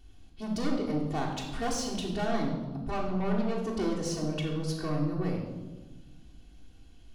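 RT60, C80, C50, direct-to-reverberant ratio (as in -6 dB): 1.3 s, 6.5 dB, 4.0 dB, -4.0 dB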